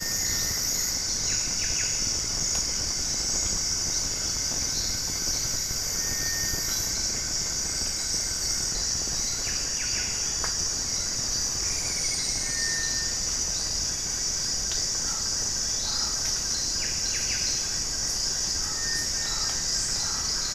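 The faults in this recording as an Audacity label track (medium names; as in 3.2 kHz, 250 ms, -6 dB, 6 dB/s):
2.400000	2.400000	dropout 4.1 ms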